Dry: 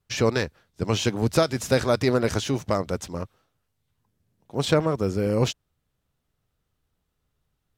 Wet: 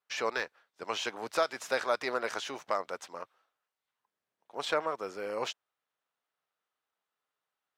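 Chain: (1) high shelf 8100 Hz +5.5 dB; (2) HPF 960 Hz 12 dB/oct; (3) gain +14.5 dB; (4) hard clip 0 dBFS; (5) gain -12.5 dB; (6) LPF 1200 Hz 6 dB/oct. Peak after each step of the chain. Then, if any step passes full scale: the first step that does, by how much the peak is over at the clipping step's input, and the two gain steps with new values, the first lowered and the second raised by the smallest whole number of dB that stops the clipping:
-8.0, -10.0, +4.5, 0.0, -12.5, -15.0 dBFS; step 3, 4.5 dB; step 3 +9.5 dB, step 5 -7.5 dB

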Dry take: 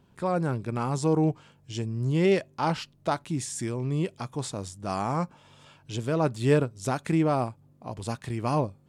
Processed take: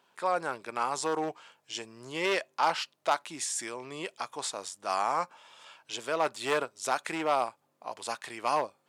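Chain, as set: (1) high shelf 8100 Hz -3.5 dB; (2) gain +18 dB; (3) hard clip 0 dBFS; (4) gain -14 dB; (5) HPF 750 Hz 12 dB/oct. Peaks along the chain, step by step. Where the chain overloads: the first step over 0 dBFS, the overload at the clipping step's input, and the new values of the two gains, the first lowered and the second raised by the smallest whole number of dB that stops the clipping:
-10.0, +8.0, 0.0, -14.0, -11.0 dBFS; step 2, 8.0 dB; step 2 +10 dB, step 4 -6 dB

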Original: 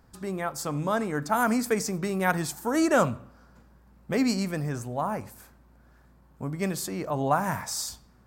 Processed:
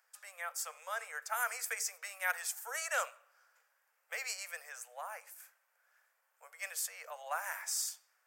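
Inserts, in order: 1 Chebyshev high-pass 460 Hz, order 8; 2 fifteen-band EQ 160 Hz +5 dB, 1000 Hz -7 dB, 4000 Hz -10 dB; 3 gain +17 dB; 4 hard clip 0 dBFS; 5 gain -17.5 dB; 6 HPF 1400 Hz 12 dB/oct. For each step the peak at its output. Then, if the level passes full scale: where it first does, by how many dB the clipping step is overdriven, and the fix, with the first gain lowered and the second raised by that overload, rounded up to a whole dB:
-12.5, -13.5, +3.5, 0.0, -17.5, -20.0 dBFS; step 3, 3.5 dB; step 3 +13 dB, step 5 -13.5 dB

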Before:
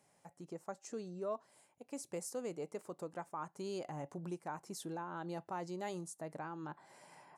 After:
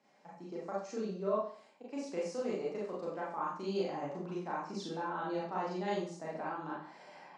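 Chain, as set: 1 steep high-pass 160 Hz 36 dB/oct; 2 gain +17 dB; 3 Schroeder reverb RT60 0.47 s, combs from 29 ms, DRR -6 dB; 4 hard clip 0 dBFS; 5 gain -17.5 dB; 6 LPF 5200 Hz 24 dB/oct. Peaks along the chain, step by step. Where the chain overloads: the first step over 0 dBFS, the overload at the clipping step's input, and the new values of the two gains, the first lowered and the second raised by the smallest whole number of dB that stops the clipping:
-28.5, -11.5, -4.0, -4.0, -21.5, -21.5 dBFS; no overload

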